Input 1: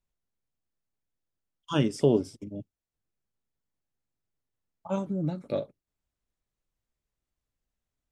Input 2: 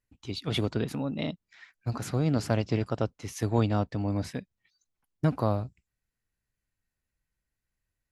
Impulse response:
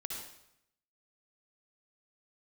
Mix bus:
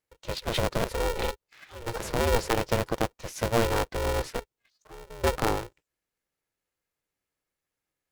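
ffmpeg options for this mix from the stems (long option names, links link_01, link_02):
-filter_complex "[0:a]acrossover=split=320|3000[link_01][link_02][link_03];[link_02]acompressor=threshold=-34dB:ratio=6[link_04];[link_01][link_04][link_03]amix=inputs=3:normalize=0,aeval=exprs='(tanh(39.8*val(0)+0.7)-tanh(0.7))/39.8':channel_layout=same,volume=-10.5dB[link_05];[1:a]lowshelf=frequency=220:gain=-8,volume=1dB[link_06];[link_05][link_06]amix=inputs=2:normalize=0,highpass=frequency=110:poles=1,equalizer=frequency=280:width=1.4:gain=9,aeval=exprs='val(0)*sgn(sin(2*PI*230*n/s))':channel_layout=same"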